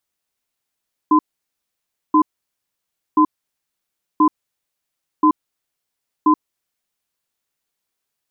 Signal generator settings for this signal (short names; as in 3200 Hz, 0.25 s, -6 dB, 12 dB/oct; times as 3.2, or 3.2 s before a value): cadence 307 Hz, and 1020 Hz, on 0.08 s, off 0.95 s, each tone -12 dBFS 5.37 s